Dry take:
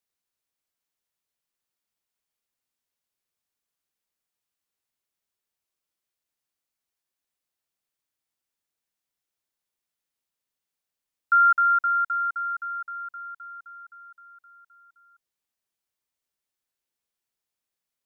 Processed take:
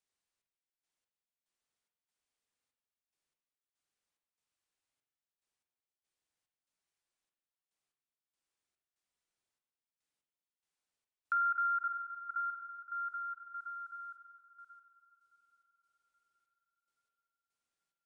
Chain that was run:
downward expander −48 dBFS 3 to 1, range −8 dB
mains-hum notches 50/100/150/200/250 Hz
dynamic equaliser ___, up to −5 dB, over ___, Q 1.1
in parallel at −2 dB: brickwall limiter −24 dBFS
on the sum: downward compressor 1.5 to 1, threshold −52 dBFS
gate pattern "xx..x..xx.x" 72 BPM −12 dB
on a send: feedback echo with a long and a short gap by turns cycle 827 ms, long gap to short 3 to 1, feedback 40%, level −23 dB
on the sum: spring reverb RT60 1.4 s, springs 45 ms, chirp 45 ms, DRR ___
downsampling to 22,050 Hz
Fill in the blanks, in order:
1,300 Hz, −30 dBFS, 3.5 dB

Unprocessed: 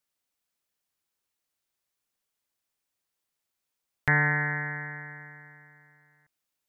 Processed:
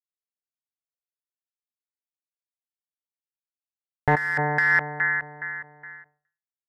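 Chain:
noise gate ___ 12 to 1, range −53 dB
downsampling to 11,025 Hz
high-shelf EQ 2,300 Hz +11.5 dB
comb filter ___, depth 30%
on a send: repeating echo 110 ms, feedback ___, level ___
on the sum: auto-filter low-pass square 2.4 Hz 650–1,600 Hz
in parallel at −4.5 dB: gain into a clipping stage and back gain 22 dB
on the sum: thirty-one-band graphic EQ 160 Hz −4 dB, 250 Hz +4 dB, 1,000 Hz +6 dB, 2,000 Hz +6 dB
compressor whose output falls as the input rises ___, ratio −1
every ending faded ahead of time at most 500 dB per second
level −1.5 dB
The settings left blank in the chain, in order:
−60 dBFS, 2.4 ms, 16%, −18 dB, −20 dBFS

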